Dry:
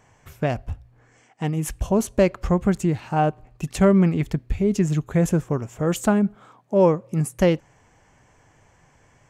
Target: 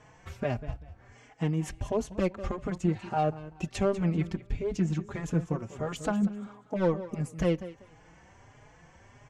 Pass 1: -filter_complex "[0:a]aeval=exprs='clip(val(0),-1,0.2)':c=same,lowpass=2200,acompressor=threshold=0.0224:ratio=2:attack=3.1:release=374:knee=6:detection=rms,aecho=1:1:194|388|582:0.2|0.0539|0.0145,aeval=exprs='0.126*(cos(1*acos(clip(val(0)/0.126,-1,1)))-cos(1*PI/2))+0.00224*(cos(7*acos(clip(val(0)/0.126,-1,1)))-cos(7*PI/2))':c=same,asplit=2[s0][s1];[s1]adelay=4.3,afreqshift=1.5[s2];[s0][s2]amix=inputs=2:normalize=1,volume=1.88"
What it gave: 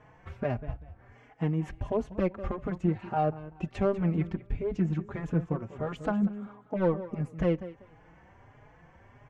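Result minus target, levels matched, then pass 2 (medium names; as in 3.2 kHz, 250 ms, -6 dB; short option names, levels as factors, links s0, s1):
8 kHz band -16.5 dB
-filter_complex "[0:a]aeval=exprs='clip(val(0),-1,0.2)':c=same,lowpass=6000,acompressor=threshold=0.0224:ratio=2:attack=3.1:release=374:knee=6:detection=rms,aecho=1:1:194|388|582:0.2|0.0539|0.0145,aeval=exprs='0.126*(cos(1*acos(clip(val(0)/0.126,-1,1)))-cos(1*PI/2))+0.00224*(cos(7*acos(clip(val(0)/0.126,-1,1)))-cos(7*PI/2))':c=same,asplit=2[s0][s1];[s1]adelay=4.3,afreqshift=1.5[s2];[s0][s2]amix=inputs=2:normalize=1,volume=1.88"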